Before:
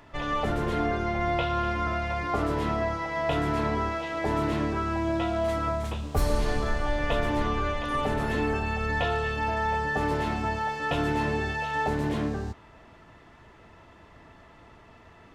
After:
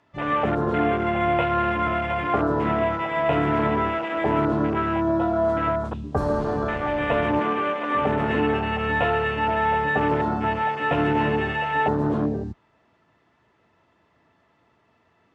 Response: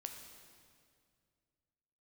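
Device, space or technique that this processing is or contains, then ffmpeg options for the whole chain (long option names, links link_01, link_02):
over-cleaned archive recording: -filter_complex "[0:a]asettb=1/sr,asplit=3[link_01][link_02][link_03];[link_01]atrim=end=7.394[link_04];[link_02]atrim=start=7.39:end=7.97,asetpts=PTS-STARTPTS,afade=type=in:duration=0.004:curve=qsin,afade=type=out:start_time=0.576:duration=0.004:curve=qsin,highpass=210[link_05];[link_03]atrim=start=7.966[link_06];[link_04][link_05]acrossfade=duration=0.004:curve1=hsin:curve2=qsin[link_07];[link_07][link_06]acrossfade=duration=0.004:curve1=qsin:curve2=hsin,highpass=110,lowpass=7800,afwtdn=0.0251,volume=6dB"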